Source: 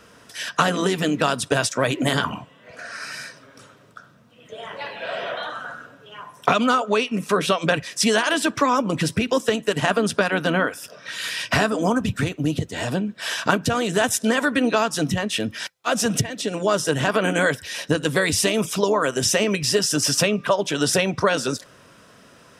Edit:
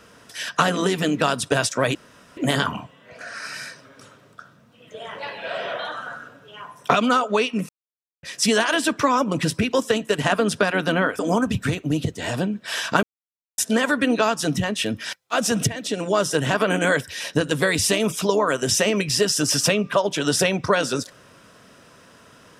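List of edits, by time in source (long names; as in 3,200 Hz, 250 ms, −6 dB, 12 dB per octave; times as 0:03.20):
0:01.95: splice in room tone 0.42 s
0:07.27–0:07.81: silence
0:10.77–0:11.73: remove
0:13.57–0:14.12: silence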